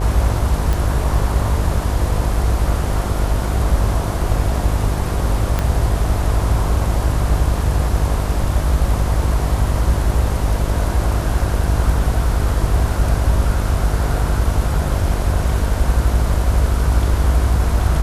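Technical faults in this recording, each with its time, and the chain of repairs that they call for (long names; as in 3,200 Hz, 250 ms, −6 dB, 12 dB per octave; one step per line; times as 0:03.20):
mains buzz 50 Hz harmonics 22 −21 dBFS
0:00.73: click
0:05.59: click −5 dBFS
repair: click removal
hum removal 50 Hz, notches 22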